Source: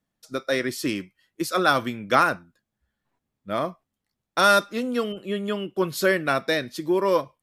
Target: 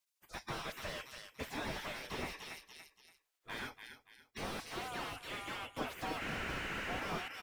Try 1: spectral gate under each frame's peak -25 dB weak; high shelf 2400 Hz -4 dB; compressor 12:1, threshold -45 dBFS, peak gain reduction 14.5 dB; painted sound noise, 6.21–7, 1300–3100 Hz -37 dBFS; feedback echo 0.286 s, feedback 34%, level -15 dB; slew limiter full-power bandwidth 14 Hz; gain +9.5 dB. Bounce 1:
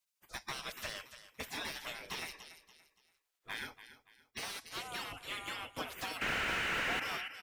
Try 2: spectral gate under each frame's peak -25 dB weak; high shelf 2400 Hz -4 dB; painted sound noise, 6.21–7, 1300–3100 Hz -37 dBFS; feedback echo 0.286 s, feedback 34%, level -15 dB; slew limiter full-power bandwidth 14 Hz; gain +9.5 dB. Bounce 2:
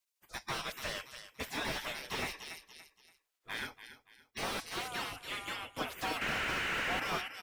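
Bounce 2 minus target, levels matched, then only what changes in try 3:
slew limiter: distortion -5 dB
change: slew limiter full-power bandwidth 6 Hz

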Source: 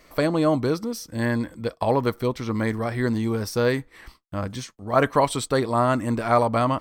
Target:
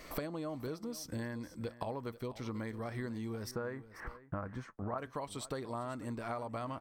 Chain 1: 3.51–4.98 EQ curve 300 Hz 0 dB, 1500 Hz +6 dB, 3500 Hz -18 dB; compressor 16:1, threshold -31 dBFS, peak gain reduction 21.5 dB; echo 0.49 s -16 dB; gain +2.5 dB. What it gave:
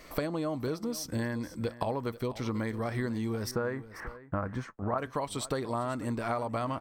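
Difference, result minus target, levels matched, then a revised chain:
compressor: peak gain reduction -7.5 dB
3.51–4.98 EQ curve 300 Hz 0 dB, 1500 Hz +6 dB, 3500 Hz -18 dB; compressor 16:1, threshold -39 dBFS, peak gain reduction 29 dB; echo 0.49 s -16 dB; gain +2.5 dB

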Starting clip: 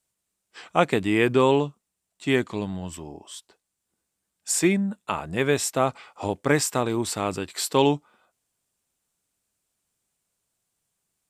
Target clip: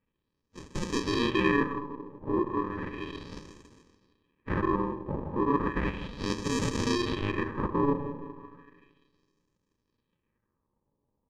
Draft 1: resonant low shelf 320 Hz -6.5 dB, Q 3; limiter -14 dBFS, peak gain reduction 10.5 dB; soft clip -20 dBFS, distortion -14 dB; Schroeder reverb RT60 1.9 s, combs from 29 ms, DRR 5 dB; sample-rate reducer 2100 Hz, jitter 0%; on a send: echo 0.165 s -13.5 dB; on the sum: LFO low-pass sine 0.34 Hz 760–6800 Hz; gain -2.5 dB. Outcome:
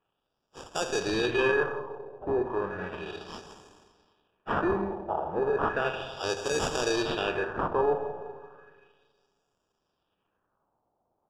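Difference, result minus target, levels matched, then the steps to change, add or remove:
sample-rate reducer: distortion -24 dB
change: sample-rate reducer 710 Hz, jitter 0%

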